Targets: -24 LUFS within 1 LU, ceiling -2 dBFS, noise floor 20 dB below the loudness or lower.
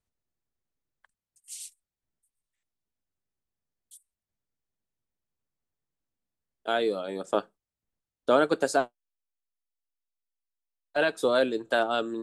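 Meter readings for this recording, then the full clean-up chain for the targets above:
loudness -27.0 LUFS; peak level -10.5 dBFS; loudness target -24.0 LUFS
-> trim +3 dB

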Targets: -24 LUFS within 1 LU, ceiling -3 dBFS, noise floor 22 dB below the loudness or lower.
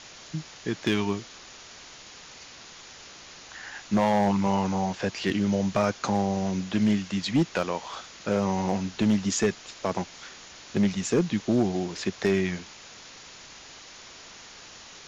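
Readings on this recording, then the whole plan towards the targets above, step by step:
clipped samples 0.6%; clipping level -16.0 dBFS; noise floor -47 dBFS; noise floor target -49 dBFS; loudness -27.0 LUFS; peak level -16.0 dBFS; loudness target -24.0 LUFS
-> clip repair -16 dBFS; noise reduction 6 dB, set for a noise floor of -47 dBFS; trim +3 dB

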